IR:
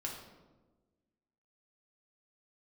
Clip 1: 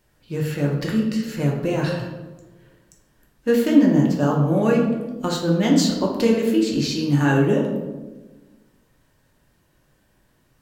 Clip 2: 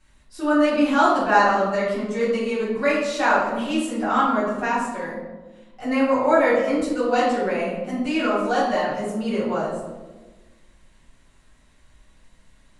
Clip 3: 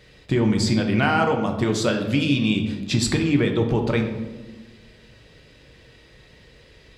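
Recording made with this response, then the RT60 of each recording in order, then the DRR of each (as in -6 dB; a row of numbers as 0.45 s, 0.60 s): 1; 1.3 s, 1.2 s, 1.3 s; -2.0 dB, -11.0 dB, 2.5 dB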